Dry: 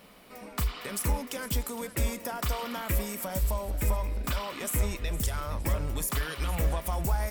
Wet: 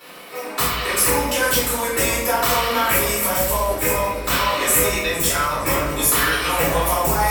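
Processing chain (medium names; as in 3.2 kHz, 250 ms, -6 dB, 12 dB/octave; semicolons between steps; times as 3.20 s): high-pass 740 Hz 6 dB/octave; reverberation RT60 0.85 s, pre-delay 3 ms, DRR -11.5 dB; trim +4.5 dB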